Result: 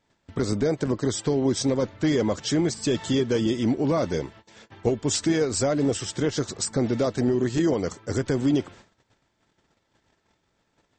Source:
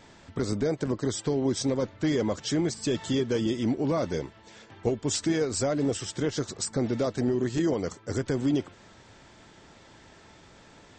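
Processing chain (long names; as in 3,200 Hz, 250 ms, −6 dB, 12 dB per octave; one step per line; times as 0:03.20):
noise gate −49 dBFS, range −23 dB
level +3.5 dB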